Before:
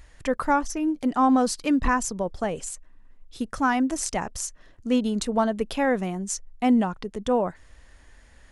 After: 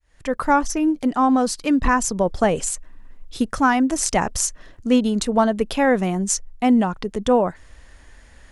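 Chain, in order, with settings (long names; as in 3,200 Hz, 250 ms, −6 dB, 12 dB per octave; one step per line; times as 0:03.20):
fade in at the beginning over 0.69 s
speech leveller within 4 dB 0.5 s
level +5.5 dB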